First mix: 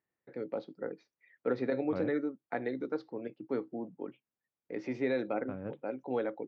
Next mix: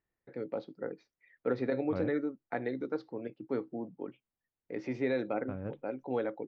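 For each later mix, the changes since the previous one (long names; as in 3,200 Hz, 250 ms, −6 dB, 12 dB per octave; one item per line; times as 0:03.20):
master: remove high-pass filter 130 Hz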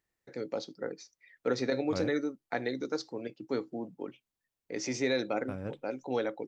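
master: remove high-frequency loss of the air 490 metres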